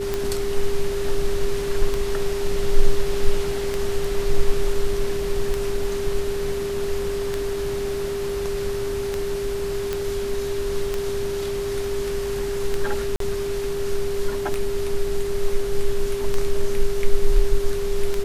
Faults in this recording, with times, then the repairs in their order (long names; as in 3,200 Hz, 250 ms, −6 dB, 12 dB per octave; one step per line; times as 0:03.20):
scratch tick 33 1/3 rpm −10 dBFS
whistle 400 Hz −24 dBFS
0:09.93: click −11 dBFS
0:13.16–0:13.20: drop-out 43 ms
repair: click removal
notch filter 400 Hz, Q 30
repair the gap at 0:13.16, 43 ms